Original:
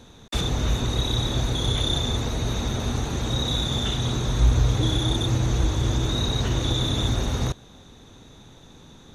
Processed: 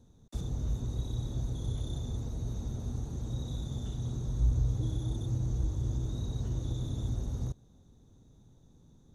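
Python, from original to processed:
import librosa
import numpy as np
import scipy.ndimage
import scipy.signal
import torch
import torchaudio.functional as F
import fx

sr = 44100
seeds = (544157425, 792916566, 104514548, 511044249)

y = fx.curve_eq(x, sr, hz=(130.0, 840.0, 2500.0, 6300.0), db=(0, -12, -23, -9))
y = F.gain(torch.from_numpy(y), -8.5).numpy()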